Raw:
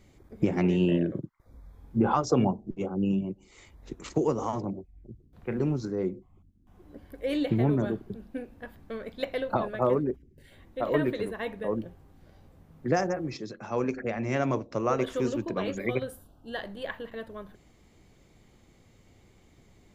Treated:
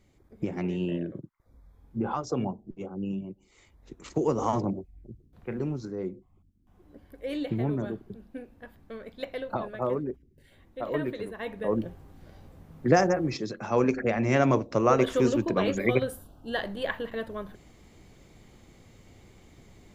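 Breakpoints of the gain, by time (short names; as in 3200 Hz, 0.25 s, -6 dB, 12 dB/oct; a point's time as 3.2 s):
3.93 s -6 dB
4.53 s +5 dB
5.69 s -4 dB
11.31 s -4 dB
11.85 s +5 dB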